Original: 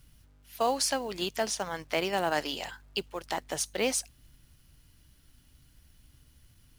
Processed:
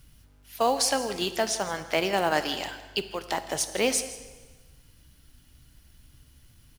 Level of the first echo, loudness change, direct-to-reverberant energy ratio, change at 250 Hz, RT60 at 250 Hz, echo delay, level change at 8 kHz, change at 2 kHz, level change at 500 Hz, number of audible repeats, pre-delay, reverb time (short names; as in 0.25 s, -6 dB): -17.0 dB, +4.0 dB, 10.0 dB, +4.0 dB, 1.4 s, 0.163 s, +4.0 dB, +4.0 dB, +4.0 dB, 1, 7 ms, 1.4 s